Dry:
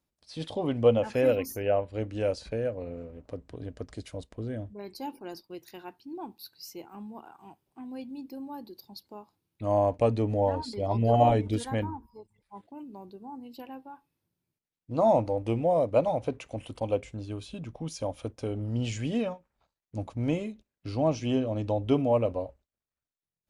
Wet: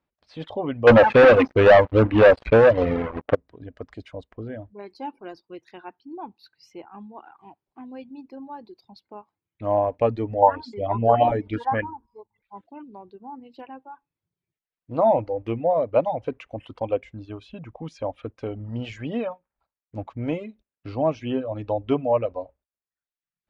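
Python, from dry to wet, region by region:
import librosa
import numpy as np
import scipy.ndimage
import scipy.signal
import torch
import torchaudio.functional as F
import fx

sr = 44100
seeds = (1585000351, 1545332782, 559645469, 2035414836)

y = fx.chain(x, sr, fx.lowpass(hz=3400.0, slope=24),
    fx.leveller(passes=5), at=(0.87, 3.35))
y = fx.chain(y, sr, fx.high_shelf(hz=3600.0, db=-9.5),
    fx.bell_lfo(hz=1.6, low_hz=810.0, high_hz=7100.0, db=14), at=(10.42, 12.83))
y = fx.dereverb_blind(y, sr, rt60_s=0.88)
y = scipy.signal.sosfilt(scipy.signal.butter(2, 2200.0, 'lowpass', fs=sr, output='sos'), y)
y = fx.low_shelf(y, sr, hz=430.0, db=-7.5)
y = y * 10.0 ** (7.0 / 20.0)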